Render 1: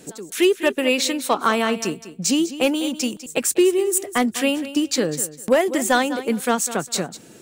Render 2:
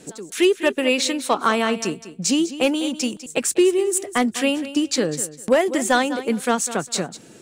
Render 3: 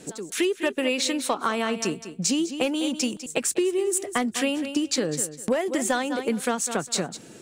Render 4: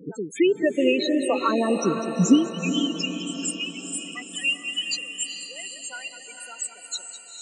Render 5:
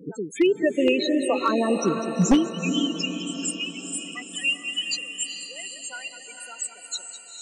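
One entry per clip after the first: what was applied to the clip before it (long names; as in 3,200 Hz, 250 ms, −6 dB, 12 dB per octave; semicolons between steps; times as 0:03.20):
low-pass filter 11,000 Hz 12 dB per octave
downward compressor 5 to 1, threshold −21 dBFS, peak gain reduction 9 dB
spectral peaks only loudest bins 8; high-pass filter sweep 72 Hz → 2,700 Hz, 0:02.10–0:02.69; feedback delay with all-pass diffusion 454 ms, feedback 53%, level −7 dB; level +4.5 dB
wavefolder on the positive side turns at −12 dBFS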